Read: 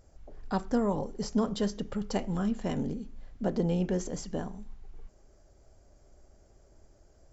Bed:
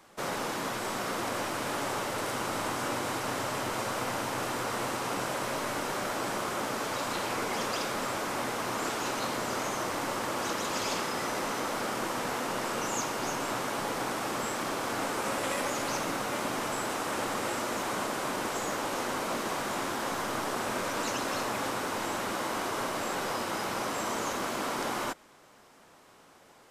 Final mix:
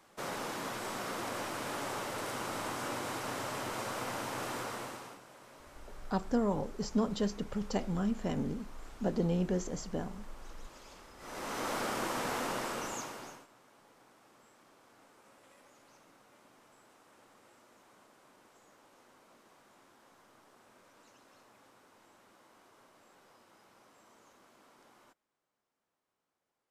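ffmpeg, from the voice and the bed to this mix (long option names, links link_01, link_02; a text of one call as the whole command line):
ffmpeg -i stem1.wav -i stem2.wav -filter_complex "[0:a]adelay=5600,volume=-2.5dB[link_01];[1:a]volume=15dB,afade=type=out:start_time=4.57:duration=0.63:silence=0.133352,afade=type=in:start_time=11.18:duration=0.53:silence=0.0944061,afade=type=out:start_time=12.45:duration=1.02:silence=0.0421697[link_02];[link_01][link_02]amix=inputs=2:normalize=0" out.wav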